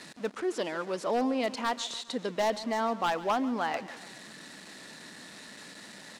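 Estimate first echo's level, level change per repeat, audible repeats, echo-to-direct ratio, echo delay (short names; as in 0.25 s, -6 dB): -17.0 dB, -4.5 dB, 3, -15.5 dB, 0.14 s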